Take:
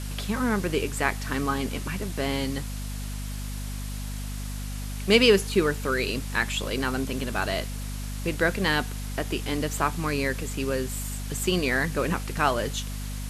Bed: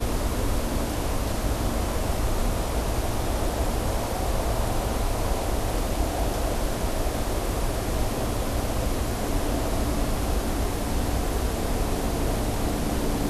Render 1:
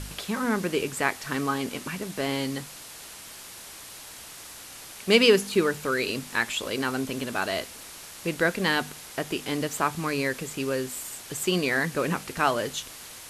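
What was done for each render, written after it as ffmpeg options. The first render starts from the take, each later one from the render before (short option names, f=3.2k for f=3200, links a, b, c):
-af "bandreject=f=50:t=h:w=4,bandreject=f=100:t=h:w=4,bandreject=f=150:t=h:w=4,bandreject=f=200:t=h:w=4,bandreject=f=250:t=h:w=4"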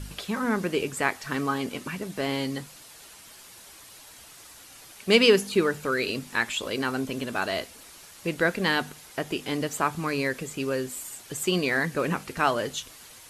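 -af "afftdn=nr=7:nf=-44"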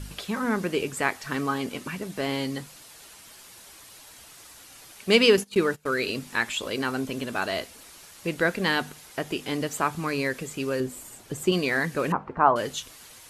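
-filter_complex "[0:a]asettb=1/sr,asplit=3[a][b][c];[a]atrim=end=5.374[d];[b]atrim=start=5.37:end=6.05,asetpts=PTS-STARTPTS,afade=t=in:d=0.004:c=qsin,afade=t=out:st=0.676:d=0.004:c=qsin,agate=range=-21dB:threshold=-34dB:ratio=16:release=100:detection=peak[e];[c]atrim=start=6.046[f];[d][e]acrossfade=d=0.004:c1=hsin:c2=qsin[g];[g][f]acrossfade=d=0.004:c1=qsin:c2=hsin,asettb=1/sr,asplit=3[h][i][j];[h]atrim=end=10.804[k];[i]atrim=start=10.8:end=11.52,asetpts=PTS-STARTPTS,afade=t=in:d=0.004:c=qsin,afade=t=out:st=0.716:d=0.004:c=qsin,tiltshelf=f=970:g=5.5[l];[j]atrim=start=11.516[m];[k][l]acrossfade=d=0.004:c1=hsin:c2=qsin[n];[n][m]acrossfade=d=0.004:c1=qsin:c2=hsin,asettb=1/sr,asplit=3[o][p][q];[o]atrim=end=12.124[r];[p]atrim=start=12.12:end=12.56,asetpts=PTS-STARTPTS,afade=t=in:d=0.004:c=qsin,afade=t=out:st=0.436:d=0.004:c=qsin,lowpass=f=1k:t=q:w=2.6[s];[q]atrim=start=12.556[t];[r][s]acrossfade=d=0.004:c1=hsin:c2=qsin[u];[u][t]acrossfade=d=0.004:c1=qsin:c2=hsin"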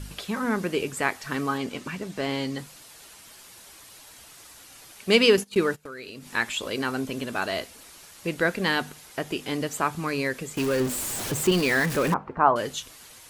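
-filter_complex "[0:a]asettb=1/sr,asplit=3[a][b][c];[a]atrim=end=1.574[d];[b]atrim=start=1.57:end=2.59,asetpts=PTS-STARTPTS,afade=t=in:d=0.004:c=qsin,afade=t=out:st=1.016:d=0.004:c=qsin,equalizer=f=11k:w=2.3:g=-9[e];[c]atrim=start=2.586[f];[d][e]acrossfade=d=0.004:c1=hsin:c2=qsin[g];[g][f]acrossfade=d=0.004:c1=qsin:c2=hsin,asettb=1/sr,asplit=3[h][i][j];[h]atrim=end=5.814[k];[i]atrim=start=5.81:end=6.31,asetpts=PTS-STARTPTS,afade=t=in:d=0.004:c=qsin,afade=t=out:st=0.496:d=0.004:c=qsin,acompressor=threshold=-38dB:ratio=4:attack=3.2:release=140:knee=1:detection=peak[l];[j]atrim=start=6.306[m];[k][l]acrossfade=d=0.004:c1=hsin:c2=qsin[n];[n][m]acrossfade=d=0.004:c1=qsin:c2=hsin,asettb=1/sr,asplit=3[o][p][q];[o]atrim=end=10.574[r];[p]atrim=start=10.57:end=12.14,asetpts=PTS-STARTPTS,afade=t=in:d=0.004:c=qsin,afade=t=out:st=1.566:d=0.004:c=qsin,aeval=exprs='val(0)+0.5*0.0473*sgn(val(0))':c=same[s];[q]atrim=start=12.136[t];[r][s]acrossfade=d=0.004:c1=hsin:c2=qsin[u];[u][t]acrossfade=d=0.004:c1=qsin:c2=hsin"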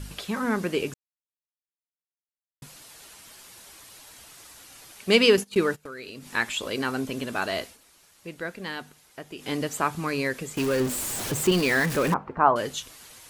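-filter_complex "[0:a]asplit=5[a][b][c][d][e];[a]atrim=end=0.94,asetpts=PTS-STARTPTS,afade=t=out:st=0.936:d=0.004:c=hsin[f];[b]atrim=start=0.94:end=2.62,asetpts=PTS-STARTPTS,volume=0[g];[c]atrim=start=2.62:end=7.78,asetpts=PTS-STARTPTS,afade=t=in:d=0.004:c=hsin,afade=t=out:st=5.01:d=0.15:c=qsin:silence=0.316228[h];[d]atrim=start=7.78:end=9.37,asetpts=PTS-STARTPTS,volume=-10dB[i];[e]atrim=start=9.37,asetpts=PTS-STARTPTS,afade=t=in:d=0.15:c=qsin:silence=0.316228[j];[f][g][h][i][j]concat=n=5:v=0:a=1"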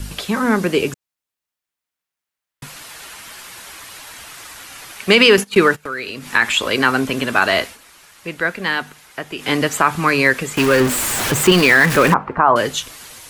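-filter_complex "[0:a]acrossover=split=280|980|2700[a][b][c][d];[c]dynaudnorm=f=650:g=5:m=8dB[e];[a][b][e][d]amix=inputs=4:normalize=0,alimiter=level_in=9.5dB:limit=-1dB:release=50:level=0:latency=1"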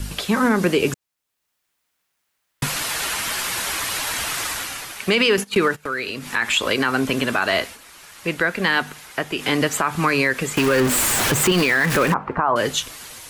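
-af "dynaudnorm=f=110:g=9:m=11.5dB,alimiter=limit=-8dB:level=0:latency=1:release=146"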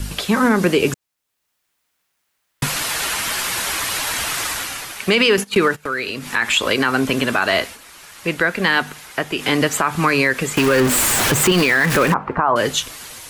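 -af "volume=2.5dB"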